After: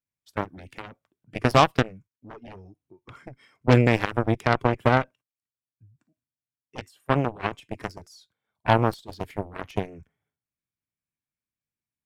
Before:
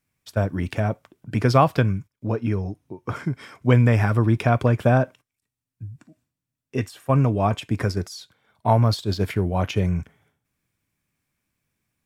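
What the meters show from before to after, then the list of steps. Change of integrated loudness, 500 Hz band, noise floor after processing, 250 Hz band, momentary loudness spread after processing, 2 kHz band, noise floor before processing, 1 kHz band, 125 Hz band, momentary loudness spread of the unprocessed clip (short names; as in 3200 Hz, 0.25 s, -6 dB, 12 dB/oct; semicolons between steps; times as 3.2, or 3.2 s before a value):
-2.0 dB, -2.0 dB, under -85 dBFS, -4.0 dB, 21 LU, +1.5 dB, under -85 dBFS, -0.5 dB, -7.5 dB, 15 LU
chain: spectral noise reduction 7 dB; added harmonics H 7 -15 dB, 8 -36 dB, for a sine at -3 dBFS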